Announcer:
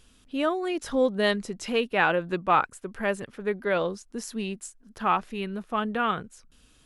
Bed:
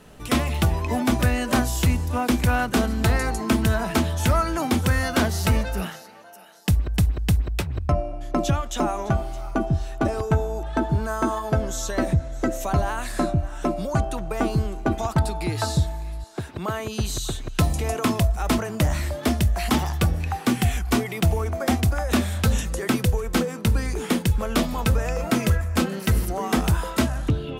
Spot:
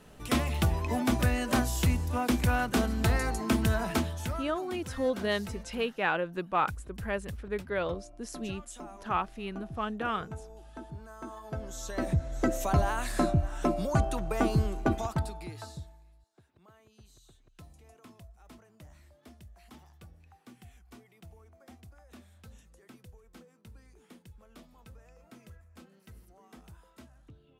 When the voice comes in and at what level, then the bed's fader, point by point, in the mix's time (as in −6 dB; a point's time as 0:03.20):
4.05 s, −6.0 dB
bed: 0:03.92 −6 dB
0:04.59 −21 dB
0:11.13 −21 dB
0:12.38 −3.5 dB
0:14.85 −3.5 dB
0:16.31 −31.5 dB